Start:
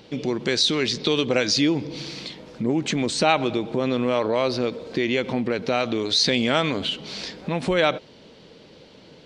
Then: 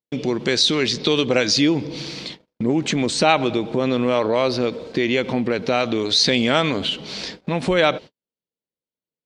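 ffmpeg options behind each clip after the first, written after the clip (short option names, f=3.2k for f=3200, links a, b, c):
-af "agate=range=-52dB:threshold=-37dB:ratio=16:detection=peak,volume=3dB"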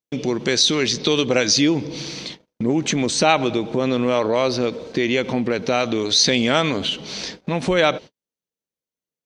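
-af "equalizer=f=6.1k:w=7.9:g=8.5"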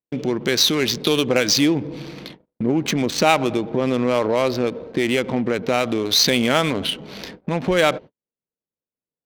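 -af "adynamicsmooth=sensitivity=2.5:basefreq=1.2k"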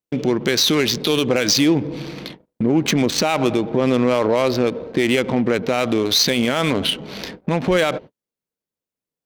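-af "alimiter=level_in=10dB:limit=-1dB:release=50:level=0:latency=1,volume=-6.5dB"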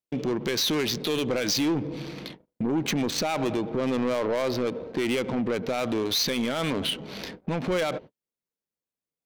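-af "asoftclip=type=tanh:threshold=-14.5dB,volume=-5.5dB"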